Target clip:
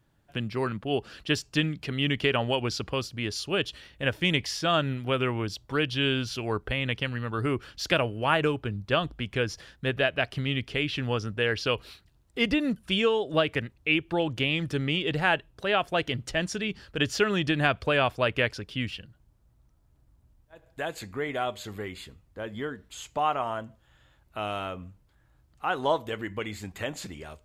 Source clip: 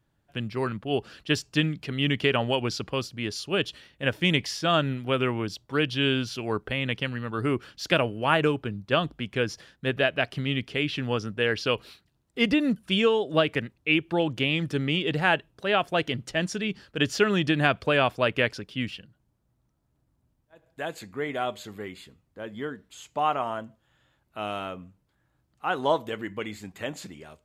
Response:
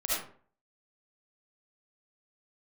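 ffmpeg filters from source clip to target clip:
-filter_complex "[0:a]asplit=2[a][b];[b]acompressor=threshold=-37dB:ratio=6,volume=1dB[c];[a][c]amix=inputs=2:normalize=0,asubboost=boost=3.5:cutoff=85,volume=-2.5dB"

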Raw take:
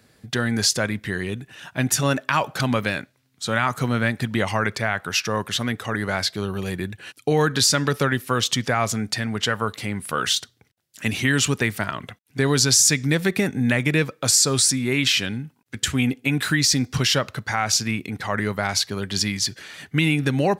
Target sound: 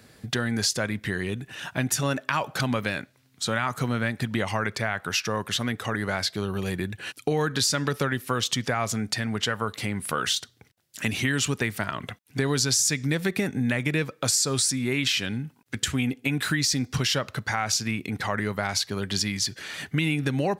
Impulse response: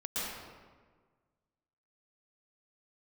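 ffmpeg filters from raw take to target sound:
-af "acompressor=threshold=-33dB:ratio=2,volume=4dB"

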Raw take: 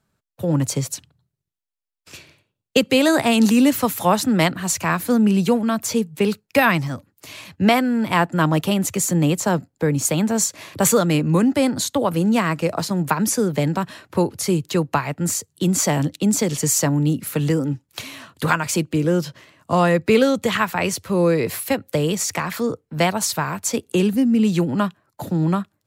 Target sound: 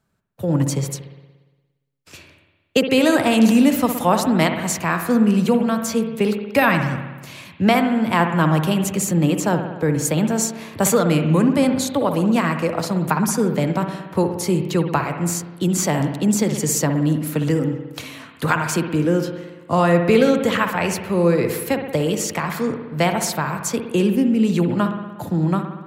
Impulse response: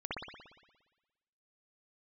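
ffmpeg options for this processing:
-filter_complex "[0:a]asplit=2[a][b];[1:a]atrim=start_sample=2205,lowpass=3.2k[c];[b][c]afir=irnorm=-1:irlink=0,volume=-7dB[d];[a][d]amix=inputs=2:normalize=0,volume=-2dB"

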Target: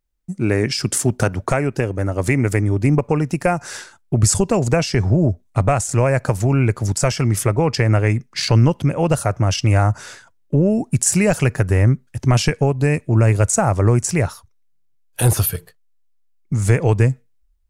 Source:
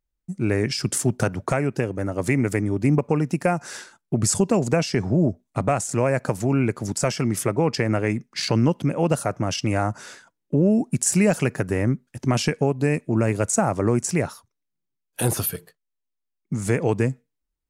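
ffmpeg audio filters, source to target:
-af "asubboost=boost=7.5:cutoff=77,volume=4.5dB"

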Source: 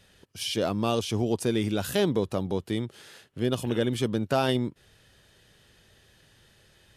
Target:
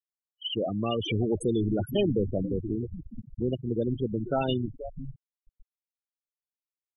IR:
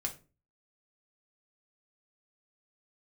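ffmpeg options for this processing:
-filter_complex "[0:a]asettb=1/sr,asplit=3[a][b][c];[a]atrim=end=1.004[d];[b]atrim=start=1:end=2.47,asetpts=PTS-STARTPTS,afade=t=in:d=0.004:c=qsin,afade=t=out:st=1.466:d=0.004:c=qsin,aeval=exprs='val(0)+0.5*0.0376*sgn(val(0))':c=same[e];[c]atrim=start=2.466[f];[d][e]acrossfade=d=0.004:c1=hsin:c2=qsin[g];[g][f]acrossfade=d=0.004:c1=qsin:c2=hsin,highshelf=f=4.1k:g=3.5,asplit=7[h][i][j][k][l][m][n];[i]adelay=475,afreqshift=-110,volume=-10.5dB[o];[j]adelay=950,afreqshift=-220,volume=-15.7dB[p];[k]adelay=1425,afreqshift=-330,volume=-20.9dB[q];[l]adelay=1900,afreqshift=-440,volume=-26.1dB[r];[m]adelay=2375,afreqshift=-550,volume=-31.3dB[s];[n]adelay=2850,afreqshift=-660,volume=-36.5dB[t];[h][o][p][q][r][s][t]amix=inputs=7:normalize=0,asplit=2[u][v];[1:a]atrim=start_sample=2205[w];[v][w]afir=irnorm=-1:irlink=0,volume=-19.5dB[x];[u][x]amix=inputs=2:normalize=0,afftfilt=real='re*gte(hypot(re,im),0.141)':imag='im*gte(hypot(re,im),0.141)':win_size=1024:overlap=0.75,superequalizer=11b=0.316:12b=3.16,asplit=2[y][z];[z]acompressor=threshold=-33dB:ratio=6,volume=0.5dB[aa];[y][aa]amix=inputs=2:normalize=0,volume=-5dB"

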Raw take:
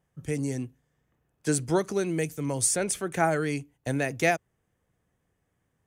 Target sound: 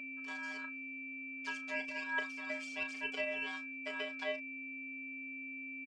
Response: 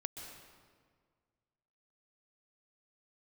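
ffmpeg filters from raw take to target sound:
-filter_complex "[0:a]deesser=0.9,aemphasis=mode=production:type=riaa,acompressor=threshold=-29dB:ratio=5,asettb=1/sr,asplit=3[a][b][c];[a]atrim=end=0.644[d];[b]atrim=start=0.64:end=3.17,asetpts=PTS-STARTPTS,afade=t=in:d=0.004:c=qsin,afade=t=out:st=2.526:d=0.004:c=qsin,aphaser=in_gain=1:out_gain=1:delay=2.1:decay=0.66:speed=1.3:type=triangular[e];[c]atrim=start=3.166[f];[d][e]acrossfade=d=0.004:c1=hsin:c2=qsin[g];[g][f]acrossfade=d=0.004:c1=qsin:c2=hsin,aeval=exprs='val(0)+0.0126*sin(2*PI*1100*n/s)':c=same,afftfilt=real='hypot(re,im)*cos(PI*b)':imag='0':win_size=512:overlap=0.75,aeval=exprs='val(0)*sin(2*PI*1300*n/s)':c=same,highpass=260,equalizer=f=330:t=q:w=4:g=-7,equalizer=f=580:t=q:w=4:g=7,equalizer=f=860:t=q:w=4:g=-10,equalizer=f=1.8k:t=q:w=4:g=-3,equalizer=f=2.6k:t=q:w=4:g=10,equalizer=f=3.8k:t=q:w=4:g=-10,lowpass=f=4.2k:w=0.5412,lowpass=f=4.2k:w=1.3066,asplit=2[h][i];[i]adelay=34,volume=-10dB[j];[h][j]amix=inputs=2:normalize=0"

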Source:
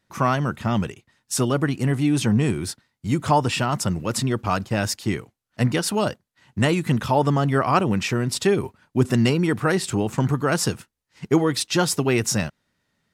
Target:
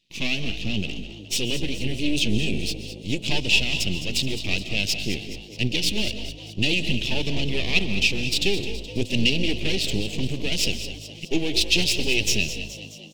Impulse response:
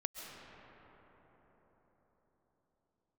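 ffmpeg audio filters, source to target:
-filter_complex "[0:a]highpass=f=140:p=1,aeval=exprs='max(val(0),0)':c=same,firequalizer=gain_entry='entry(300,0);entry(1300,-28);entry(2600,14);entry(9400,-5)':delay=0.05:min_phase=1,asplit=7[a][b][c][d][e][f][g];[b]adelay=211,afreqshift=52,volume=-12dB[h];[c]adelay=422,afreqshift=104,volume=-17dB[i];[d]adelay=633,afreqshift=156,volume=-22.1dB[j];[e]adelay=844,afreqshift=208,volume=-27.1dB[k];[f]adelay=1055,afreqshift=260,volume=-32.1dB[l];[g]adelay=1266,afreqshift=312,volume=-37.2dB[m];[a][h][i][j][k][l][m]amix=inputs=7:normalize=0,asplit=2[n][o];[1:a]atrim=start_sample=2205,afade=t=out:st=0.28:d=0.01,atrim=end_sample=12789[p];[o][p]afir=irnorm=-1:irlink=0,volume=0.5dB[q];[n][q]amix=inputs=2:normalize=0,volume=-3dB"

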